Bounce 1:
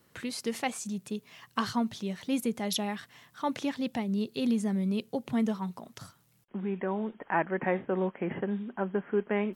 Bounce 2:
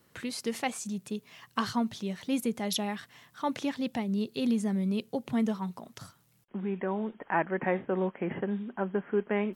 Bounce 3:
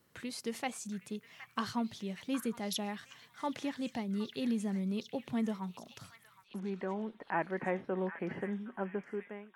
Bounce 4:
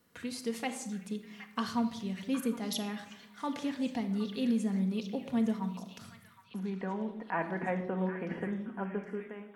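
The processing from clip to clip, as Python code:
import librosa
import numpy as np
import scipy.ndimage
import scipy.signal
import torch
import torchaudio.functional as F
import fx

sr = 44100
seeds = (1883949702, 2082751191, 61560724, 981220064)

y1 = x
y2 = fx.fade_out_tail(y1, sr, length_s=0.73)
y2 = fx.echo_stepped(y2, sr, ms=766, hz=1700.0, octaves=0.7, feedback_pct=70, wet_db=-8)
y2 = F.gain(torch.from_numpy(y2), -5.5).numpy()
y3 = fx.room_shoebox(y2, sr, seeds[0], volume_m3=2900.0, walls='furnished', distance_m=1.8)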